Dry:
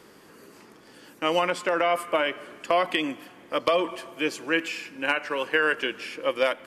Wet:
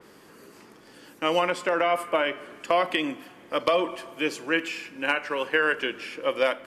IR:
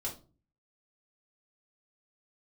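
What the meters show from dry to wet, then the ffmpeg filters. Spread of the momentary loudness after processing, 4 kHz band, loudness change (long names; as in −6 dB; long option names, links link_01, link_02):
8 LU, −0.5 dB, 0.0 dB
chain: -filter_complex "[0:a]asplit=2[link_01][link_02];[1:a]atrim=start_sample=2205,adelay=34[link_03];[link_02][link_03]afir=irnorm=-1:irlink=0,volume=-18.5dB[link_04];[link_01][link_04]amix=inputs=2:normalize=0,adynamicequalizer=threshold=0.00891:dfrequency=3100:dqfactor=0.7:tfrequency=3100:tqfactor=0.7:attack=5:release=100:ratio=0.375:range=1.5:mode=cutabove:tftype=highshelf"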